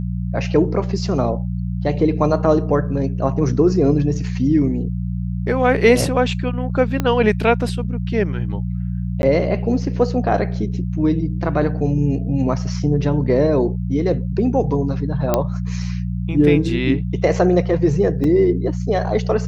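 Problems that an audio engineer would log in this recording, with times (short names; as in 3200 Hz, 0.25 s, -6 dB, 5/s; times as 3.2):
hum 60 Hz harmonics 3 -23 dBFS
7 pop -7 dBFS
9.22–9.23 gap 11 ms
15.34 pop -3 dBFS
18.24 gap 2.8 ms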